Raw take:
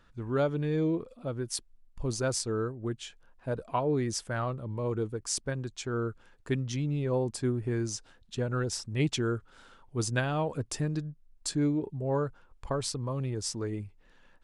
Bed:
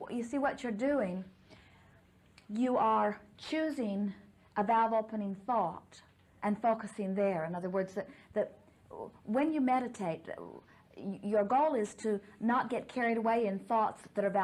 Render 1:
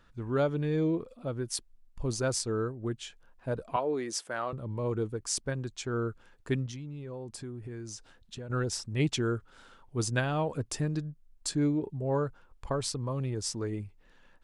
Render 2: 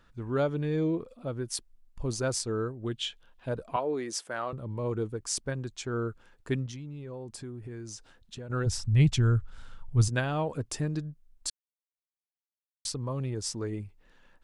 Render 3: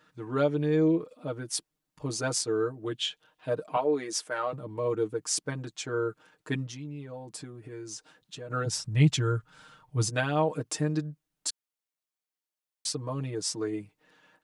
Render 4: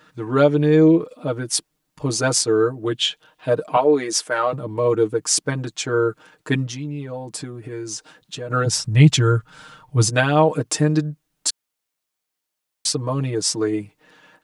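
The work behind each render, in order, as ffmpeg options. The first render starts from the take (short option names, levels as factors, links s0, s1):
-filter_complex "[0:a]asettb=1/sr,asplit=3[s0][s1][s2];[s0]atrim=end=3.764[s3];[s1]atrim=start=3.76:end=4.53,asetpts=PTS-STARTPTS,afade=t=in:d=0.004:c=qsin,afade=t=out:st=0.766:d=0.004:c=qsin,highpass=340[s4];[s2]atrim=start=4.526[s5];[s3][s4]acrossfade=d=0.004:c1=hsin:c2=qsin[s6];[s6][s5]acrossfade=d=0.004:c1=qsin:c2=hsin,asettb=1/sr,asplit=3[s7][s8][s9];[s7]atrim=end=6.664[s10];[s8]atrim=start=6.66:end=8.5,asetpts=PTS-STARTPTS,afade=t=in:d=0.004:c=qsin,afade=t=out:st=1.836:d=0.004:c=qsin,acompressor=threshold=0.0112:ratio=4:attack=3.2:release=140:knee=1:detection=peak[s11];[s9]atrim=start=8.496[s12];[s10][s11]acrossfade=d=0.004:c1=hsin:c2=qsin[s13];[s13][s12]acrossfade=d=0.004:c1=qsin:c2=hsin"
-filter_complex "[0:a]asettb=1/sr,asplit=3[s0][s1][s2];[s0]atrim=end=2.854[s3];[s1]atrim=start=2.85:end=3.49,asetpts=PTS-STARTPTS,afade=t=in:d=0.004:c=qsin,afade=t=out:st=0.636:d=0.004:c=qsin,equalizer=f=3300:t=o:w=0.77:g=12.5[s4];[s2]atrim=start=3.486[s5];[s3][s4]acrossfade=d=0.004:c1=hsin:c2=qsin[s6];[s6][s5]acrossfade=d=0.004:c1=qsin:c2=hsin,asplit=3[s7][s8][s9];[s7]afade=t=out:st=8.65:d=0.02[s10];[s8]asubboost=boost=9:cutoff=110,afade=t=in:st=8.65:d=0.02,afade=t=out:st=10.07:d=0.02[s11];[s9]afade=t=in:st=10.07:d=0.02[s12];[s10][s11][s12]amix=inputs=3:normalize=0,asplit=3[s13][s14][s15];[s13]atrim=end=11.5,asetpts=PTS-STARTPTS,afade=t=out:st=11.496:d=0.004:c=hsin[s16];[s14]atrim=start=11.5:end=12.85,asetpts=PTS-STARTPTS,volume=0[s17];[s15]atrim=start=12.85,asetpts=PTS-STARTPTS,afade=t=in:d=0.004:c=hsin[s18];[s16][s17][s18]concat=n=3:v=0:a=1"
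-af "highpass=180,aecho=1:1:6.5:0.95"
-af "volume=3.35,alimiter=limit=0.794:level=0:latency=1"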